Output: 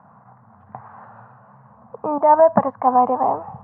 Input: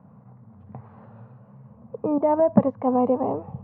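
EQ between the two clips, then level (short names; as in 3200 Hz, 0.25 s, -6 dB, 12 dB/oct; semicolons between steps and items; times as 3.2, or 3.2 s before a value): tone controls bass -1 dB, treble -10 dB; band shelf 1100 Hz +14 dB; high shelf 2000 Hz +8.5 dB; -3.5 dB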